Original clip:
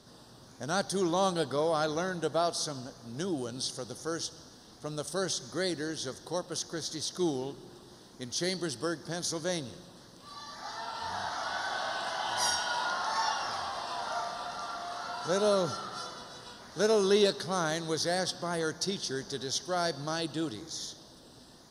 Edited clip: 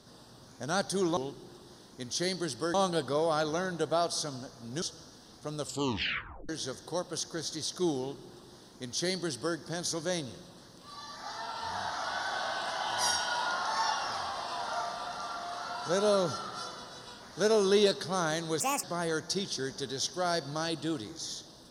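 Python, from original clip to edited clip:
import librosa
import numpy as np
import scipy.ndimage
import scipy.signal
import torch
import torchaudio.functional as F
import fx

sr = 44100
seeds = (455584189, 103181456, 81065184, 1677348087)

y = fx.edit(x, sr, fx.cut(start_s=3.25, length_s=0.96),
    fx.tape_stop(start_s=4.98, length_s=0.9),
    fx.duplicate(start_s=7.38, length_s=1.57, to_s=1.17),
    fx.speed_span(start_s=17.99, length_s=0.36, speed=1.54), tone=tone)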